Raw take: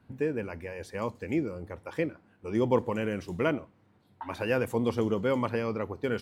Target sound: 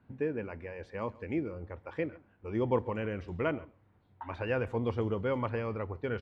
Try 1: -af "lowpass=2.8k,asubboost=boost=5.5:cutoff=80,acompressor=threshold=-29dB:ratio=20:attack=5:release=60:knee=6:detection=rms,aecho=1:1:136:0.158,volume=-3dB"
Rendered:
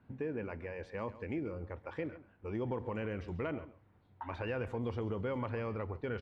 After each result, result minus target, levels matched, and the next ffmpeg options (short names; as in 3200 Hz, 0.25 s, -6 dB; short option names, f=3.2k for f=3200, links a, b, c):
compressor: peak gain reduction +12.5 dB; echo-to-direct +6.5 dB
-af "lowpass=2.8k,asubboost=boost=5.5:cutoff=80,aecho=1:1:136:0.158,volume=-3dB"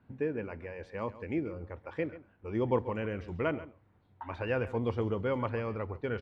echo-to-direct +6.5 dB
-af "lowpass=2.8k,asubboost=boost=5.5:cutoff=80,aecho=1:1:136:0.075,volume=-3dB"